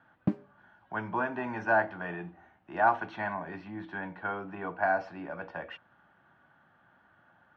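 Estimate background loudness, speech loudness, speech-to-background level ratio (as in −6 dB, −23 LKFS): −35.5 LKFS, −32.5 LKFS, 3.0 dB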